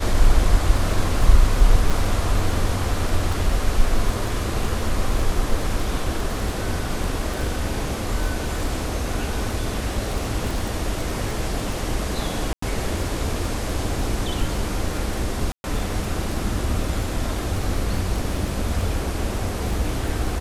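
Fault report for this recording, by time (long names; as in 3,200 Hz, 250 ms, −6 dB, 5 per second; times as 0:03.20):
surface crackle 14 per second −24 dBFS
0:01.90–0:01.91: drop-out 5.3 ms
0:12.53–0:12.62: drop-out 94 ms
0:15.52–0:15.64: drop-out 121 ms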